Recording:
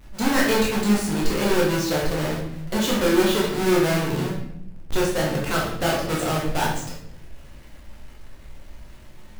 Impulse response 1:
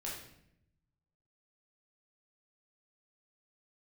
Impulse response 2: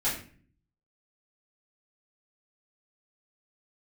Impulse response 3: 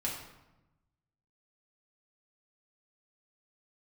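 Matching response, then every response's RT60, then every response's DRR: 1; 0.75, 0.45, 1.0 s; -5.0, -11.0, -4.5 dB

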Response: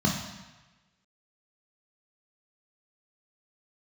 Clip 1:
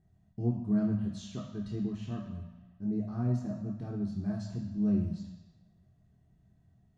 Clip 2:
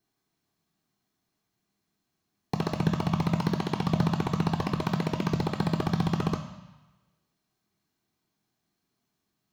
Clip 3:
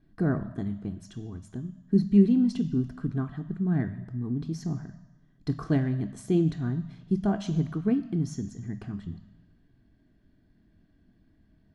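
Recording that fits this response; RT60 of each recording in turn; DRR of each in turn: 1; 1.1, 1.1, 1.2 s; -1.0, 6.0, 10.5 dB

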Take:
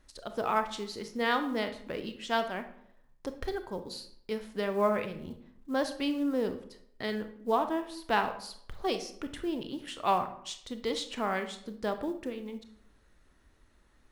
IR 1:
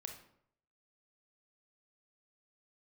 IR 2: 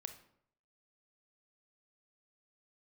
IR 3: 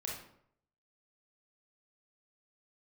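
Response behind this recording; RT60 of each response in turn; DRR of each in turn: 2; 0.70, 0.70, 0.70 s; 3.5, 8.0, -3.0 dB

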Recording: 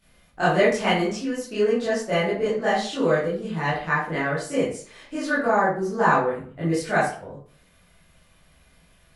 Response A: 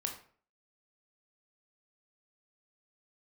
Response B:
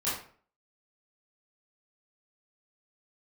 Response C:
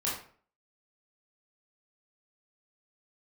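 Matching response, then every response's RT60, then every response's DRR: B; 0.50, 0.50, 0.50 s; 2.0, -11.5, -7.0 dB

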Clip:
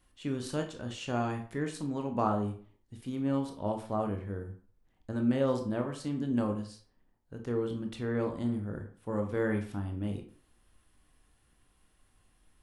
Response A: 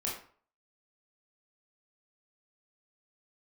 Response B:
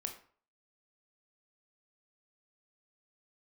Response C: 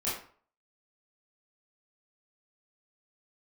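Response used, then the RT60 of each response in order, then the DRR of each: B; 0.45, 0.45, 0.45 s; -4.5, 4.0, -9.5 dB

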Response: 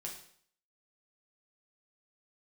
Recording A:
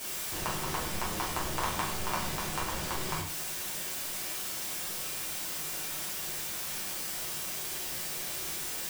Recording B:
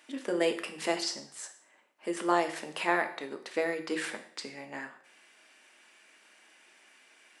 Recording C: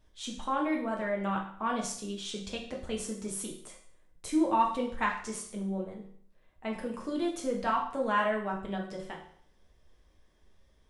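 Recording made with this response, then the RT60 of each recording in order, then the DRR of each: C; 0.60, 0.60, 0.60 s; -7.0, 5.0, -1.5 dB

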